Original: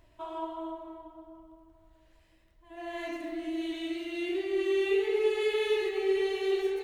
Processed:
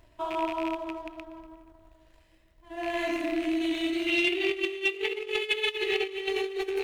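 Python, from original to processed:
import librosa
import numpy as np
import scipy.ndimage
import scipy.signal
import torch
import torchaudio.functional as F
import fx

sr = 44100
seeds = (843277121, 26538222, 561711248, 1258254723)

y = fx.rattle_buzz(x, sr, strikes_db=-52.0, level_db=-33.0)
y = fx.over_compress(y, sr, threshold_db=-33.0, ratio=-0.5)
y = fx.peak_eq(y, sr, hz=2900.0, db=10.5, octaves=0.96, at=(4.07, 6.29))
y = fx.echo_feedback(y, sr, ms=240, feedback_pct=48, wet_db=-19.0)
y = fx.leveller(y, sr, passes=1)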